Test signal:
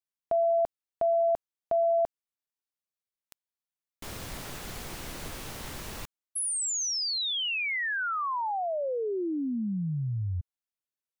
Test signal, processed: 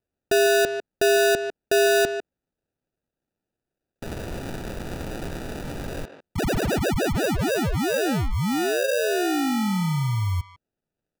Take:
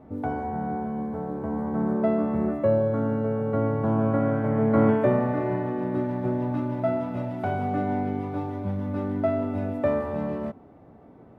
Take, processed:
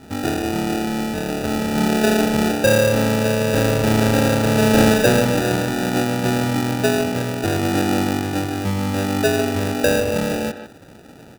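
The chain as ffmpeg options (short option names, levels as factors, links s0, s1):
-filter_complex "[0:a]acrusher=samples=41:mix=1:aa=0.000001,asplit=2[s0][s1];[s1]adelay=150,highpass=300,lowpass=3400,asoftclip=type=hard:threshold=0.119,volume=0.355[s2];[s0][s2]amix=inputs=2:normalize=0,asoftclip=type=tanh:threshold=0.237,volume=2.24"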